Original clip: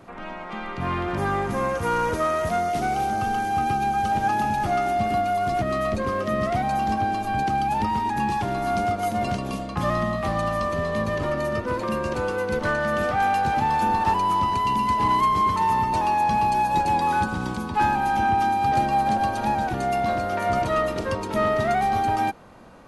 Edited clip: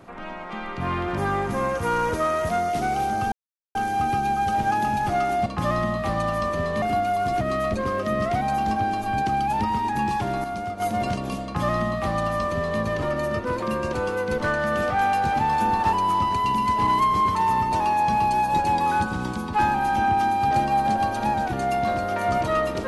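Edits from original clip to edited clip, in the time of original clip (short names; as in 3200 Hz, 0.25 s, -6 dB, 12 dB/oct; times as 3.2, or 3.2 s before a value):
3.32 insert silence 0.43 s
8.65–9.01 gain -6.5 dB
9.65–11.01 copy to 5.03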